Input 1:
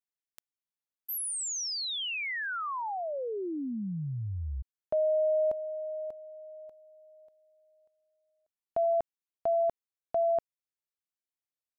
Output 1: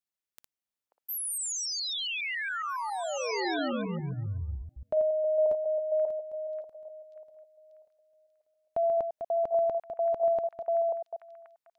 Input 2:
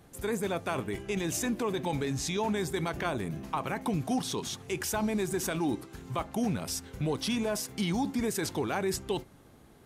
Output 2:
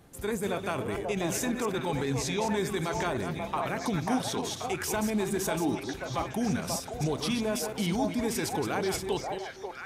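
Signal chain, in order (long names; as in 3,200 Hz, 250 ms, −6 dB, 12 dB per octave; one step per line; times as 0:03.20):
delay that plays each chunk backwards 138 ms, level −7 dB
echo through a band-pass that steps 536 ms, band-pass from 670 Hz, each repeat 1.4 octaves, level −1 dB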